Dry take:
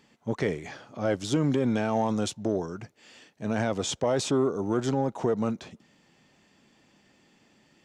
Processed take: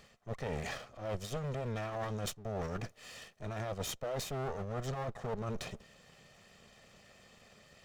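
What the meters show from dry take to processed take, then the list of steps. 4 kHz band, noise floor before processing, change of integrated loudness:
-8.0 dB, -64 dBFS, -11.5 dB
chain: minimum comb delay 1.6 ms; reverse; compressor 10:1, threshold -39 dBFS, peak gain reduction 16.5 dB; reverse; gain +4 dB

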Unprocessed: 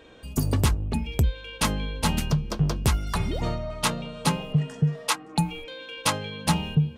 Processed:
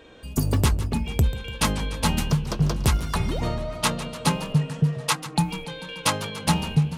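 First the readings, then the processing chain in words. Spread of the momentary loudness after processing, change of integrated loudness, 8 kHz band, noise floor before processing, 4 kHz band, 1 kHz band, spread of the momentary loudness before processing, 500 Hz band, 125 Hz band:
5 LU, +1.5 dB, +2.0 dB, -44 dBFS, +2.0 dB, +2.0 dB, 5 LU, +2.0 dB, +1.5 dB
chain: warbling echo 0.146 s, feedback 69%, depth 192 cents, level -14.5 dB; gain +1.5 dB

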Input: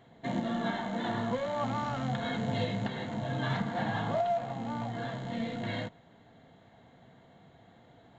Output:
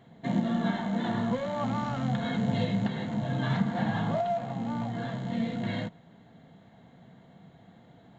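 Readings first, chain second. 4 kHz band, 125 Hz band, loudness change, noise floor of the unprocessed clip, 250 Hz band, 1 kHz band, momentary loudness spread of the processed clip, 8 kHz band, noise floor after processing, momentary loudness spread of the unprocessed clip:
0.0 dB, +4.5 dB, +3.0 dB, -59 dBFS, +5.5 dB, 0.0 dB, 5 LU, n/a, -56 dBFS, 5 LU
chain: bell 180 Hz +8.5 dB 0.85 oct

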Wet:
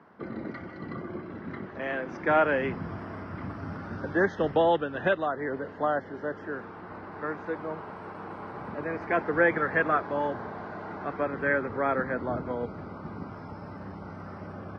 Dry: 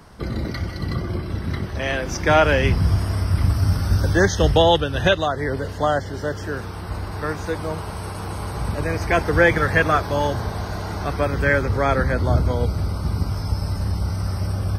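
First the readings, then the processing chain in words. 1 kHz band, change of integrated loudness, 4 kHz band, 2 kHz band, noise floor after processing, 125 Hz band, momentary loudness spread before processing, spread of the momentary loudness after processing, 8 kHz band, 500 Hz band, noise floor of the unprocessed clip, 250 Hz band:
-6.5 dB, -8.5 dB, -19.5 dB, -7.0 dB, -43 dBFS, -19.5 dB, 12 LU, 17 LU, under -30 dB, -7.0 dB, -31 dBFS, -7.5 dB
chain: Chebyshev band-pass 230–1700 Hz, order 2; gain -6 dB

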